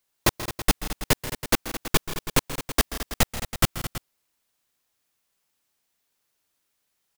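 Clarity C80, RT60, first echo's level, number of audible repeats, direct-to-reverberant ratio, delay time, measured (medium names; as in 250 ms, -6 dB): no reverb, no reverb, -15.0 dB, 4, no reverb, 133 ms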